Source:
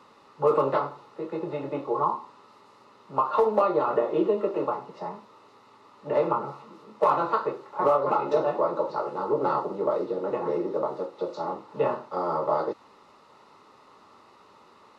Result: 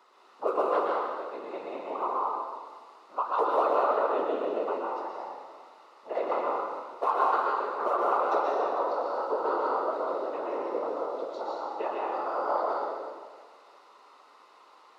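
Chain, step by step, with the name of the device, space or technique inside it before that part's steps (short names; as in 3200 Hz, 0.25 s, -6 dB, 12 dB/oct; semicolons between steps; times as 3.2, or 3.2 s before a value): whispering ghost (whisperiser; HPF 430 Hz 12 dB/oct; reverb RT60 1.6 s, pre-delay 0.113 s, DRR -3 dB); HPF 250 Hz 12 dB/oct; gain -5.5 dB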